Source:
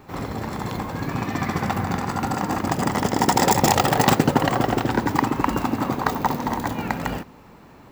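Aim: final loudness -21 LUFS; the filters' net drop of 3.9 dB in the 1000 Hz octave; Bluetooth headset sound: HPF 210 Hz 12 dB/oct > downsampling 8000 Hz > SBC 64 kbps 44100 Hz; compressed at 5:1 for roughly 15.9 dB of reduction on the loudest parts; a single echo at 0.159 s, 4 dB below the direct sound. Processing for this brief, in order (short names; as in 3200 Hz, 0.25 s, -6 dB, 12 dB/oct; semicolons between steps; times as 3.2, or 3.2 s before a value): bell 1000 Hz -5 dB; compressor 5:1, threshold -32 dBFS; HPF 210 Hz 12 dB/oct; echo 0.159 s -4 dB; downsampling 8000 Hz; gain +15 dB; SBC 64 kbps 44100 Hz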